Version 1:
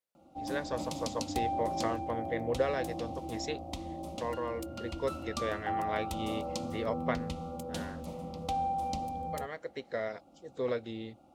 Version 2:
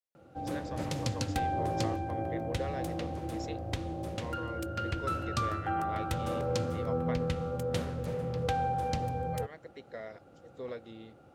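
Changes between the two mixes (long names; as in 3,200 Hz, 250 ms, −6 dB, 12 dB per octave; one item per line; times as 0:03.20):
speech −8.0 dB
background: remove phaser with its sweep stopped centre 440 Hz, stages 6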